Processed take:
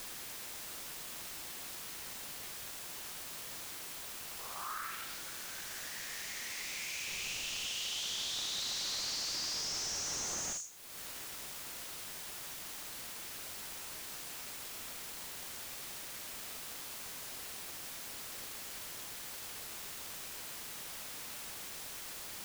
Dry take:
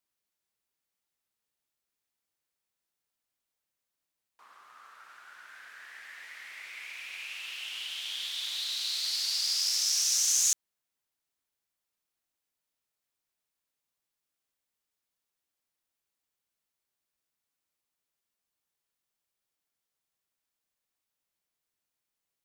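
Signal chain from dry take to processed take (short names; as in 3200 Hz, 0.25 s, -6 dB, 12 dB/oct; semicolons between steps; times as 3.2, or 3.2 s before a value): band-pass sweep 440 Hz -> 6500 Hz, 4.4–5.22; 7.06–7.66 added noise pink -68 dBFS; Schroeder reverb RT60 0.3 s, combs from 29 ms, DRR 5 dB; in parallel at -10 dB: requantised 8-bit, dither triangular; on the sum: compressor 2.5:1, threshold -52 dBFS, peak gain reduction 20.5 dB; slew limiter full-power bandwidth 15 Hz; gain +14.5 dB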